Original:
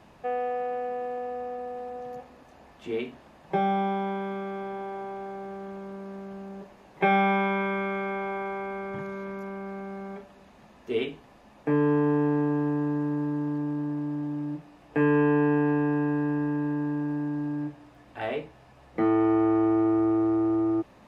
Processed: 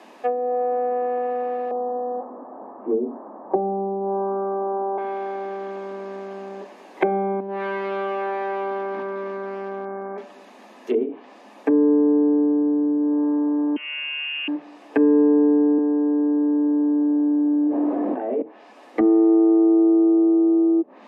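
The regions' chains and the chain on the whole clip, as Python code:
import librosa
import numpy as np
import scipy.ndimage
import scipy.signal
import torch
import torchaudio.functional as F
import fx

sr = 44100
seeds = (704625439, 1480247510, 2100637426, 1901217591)

y = fx.chain(x, sr, fx.law_mismatch(coded='mu'),
    fx.steep_lowpass(hz=1200.0, slope=36), at=(1.71, 4.98))
y = fx.chain(y, sr, fx.lowpass(hz=1600.0, slope=24),
    fx.overload_stage(gain_db=31.5), at=(7.4, 10.18))
y = fx.chain(y, sr, fx.lower_of_two(delay_ms=2.4),
    fx.freq_invert(carrier_hz=3100), at=(13.76, 14.48))
y = fx.chain(y, sr, fx.bessel_highpass(hz=270.0, order=2),
    fx.env_flatten(amount_pct=100), at=(15.78, 18.42))
y = scipy.signal.sosfilt(scipy.signal.butter(8, 230.0, 'highpass', fs=sr, output='sos'), y)
y = fx.notch(y, sr, hz=1400.0, q=13.0)
y = fx.env_lowpass_down(y, sr, base_hz=410.0, full_db=-25.0)
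y = F.gain(torch.from_numpy(y), 9.0).numpy()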